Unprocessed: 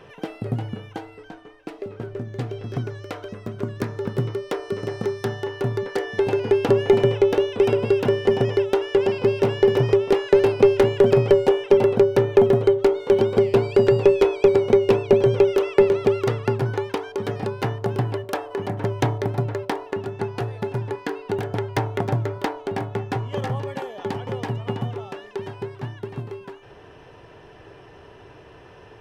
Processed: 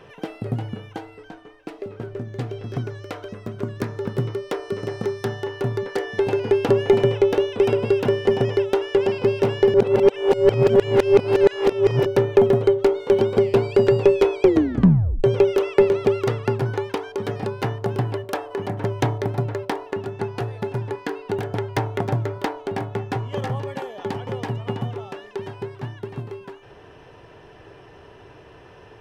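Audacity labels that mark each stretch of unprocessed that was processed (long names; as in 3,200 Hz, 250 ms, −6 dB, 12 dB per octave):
9.740000	12.060000	reverse
14.420000	14.420000	tape stop 0.82 s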